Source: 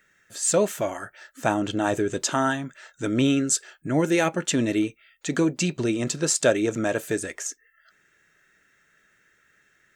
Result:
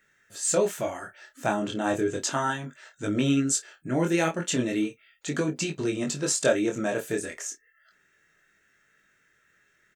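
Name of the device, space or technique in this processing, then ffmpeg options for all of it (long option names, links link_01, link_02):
double-tracked vocal: -filter_complex "[0:a]asplit=2[link_01][link_02];[link_02]adelay=29,volume=-13dB[link_03];[link_01][link_03]amix=inputs=2:normalize=0,flanger=delay=19.5:depth=4.8:speed=0.35"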